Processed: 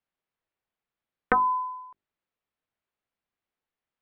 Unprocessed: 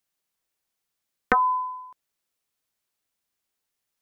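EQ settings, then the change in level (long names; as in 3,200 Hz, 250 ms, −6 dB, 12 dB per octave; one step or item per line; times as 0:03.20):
high-frequency loss of the air 380 metres
mains-hum notches 50/100/150/200/250/300/350/400 Hz
0.0 dB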